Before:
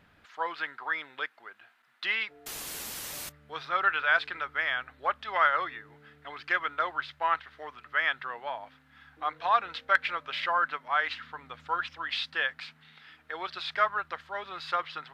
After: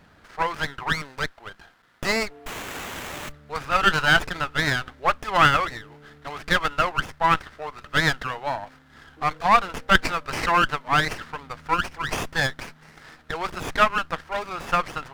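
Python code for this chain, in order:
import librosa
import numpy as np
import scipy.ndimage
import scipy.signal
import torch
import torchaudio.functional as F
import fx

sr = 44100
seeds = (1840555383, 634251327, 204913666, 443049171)

y = fx.running_max(x, sr, window=9)
y = F.gain(torch.from_numpy(y), 8.5).numpy()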